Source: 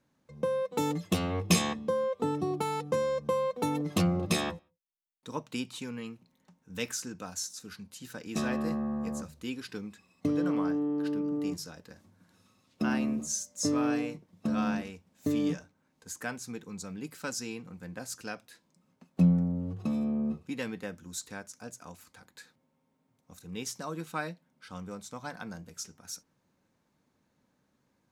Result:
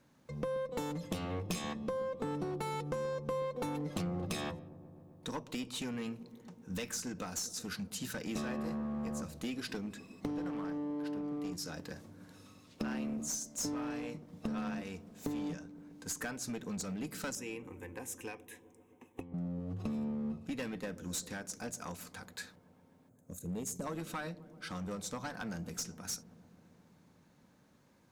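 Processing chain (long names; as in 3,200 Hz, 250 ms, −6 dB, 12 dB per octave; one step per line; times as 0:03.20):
0:23.09–0:23.87: gain on a spectral selection 680–6,200 Hz −14 dB
downward compressor 6 to 1, threshold −41 dBFS, peak gain reduction 20.5 dB
0:17.35–0:19.34: phaser with its sweep stopped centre 930 Hz, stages 8
asymmetric clip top −41.5 dBFS
on a send: delay with a low-pass on its return 130 ms, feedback 81%, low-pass 590 Hz, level −15 dB
on the sum: level +6.5 dB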